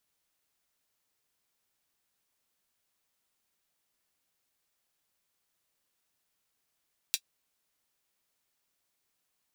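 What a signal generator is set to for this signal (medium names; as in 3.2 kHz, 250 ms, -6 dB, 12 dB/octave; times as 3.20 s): closed hi-hat, high-pass 3.3 kHz, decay 0.07 s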